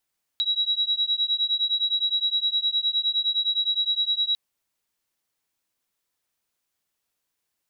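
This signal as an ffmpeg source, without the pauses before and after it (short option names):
-f lavfi -i "aevalsrc='0.0596*(sin(2*PI*3870*t)+sin(2*PI*3879.7*t))':d=3.95:s=44100"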